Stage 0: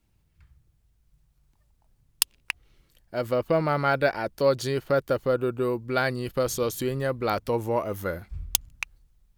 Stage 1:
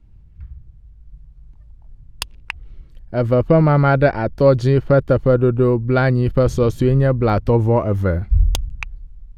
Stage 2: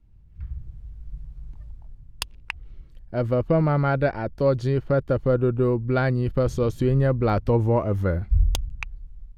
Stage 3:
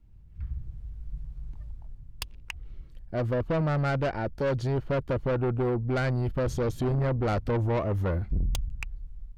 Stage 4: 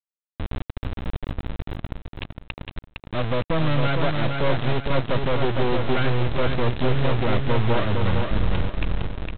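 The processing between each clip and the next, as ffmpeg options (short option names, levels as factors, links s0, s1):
-af "aemphasis=mode=reproduction:type=riaa,volume=2"
-af "dynaudnorm=f=280:g=3:m=4.47,volume=0.376"
-af "asoftclip=type=tanh:threshold=0.0708"
-af "aresample=8000,acrusher=bits=3:dc=4:mix=0:aa=0.000001,aresample=44100,aecho=1:1:459|918|1377|1836:0.596|0.197|0.0649|0.0214,volume=2.37"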